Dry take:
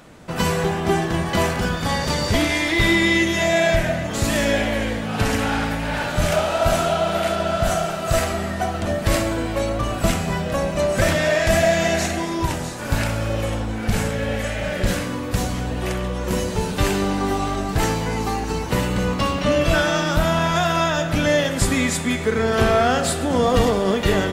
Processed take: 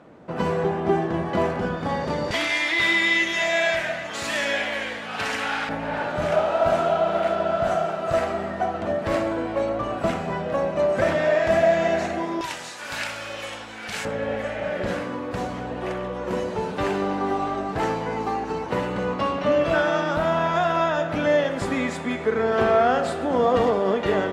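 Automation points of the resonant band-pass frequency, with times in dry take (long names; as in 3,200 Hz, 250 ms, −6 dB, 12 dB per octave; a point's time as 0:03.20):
resonant band-pass, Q 0.58
460 Hz
from 0:02.31 2,000 Hz
from 0:05.69 640 Hz
from 0:12.41 2,800 Hz
from 0:14.05 690 Hz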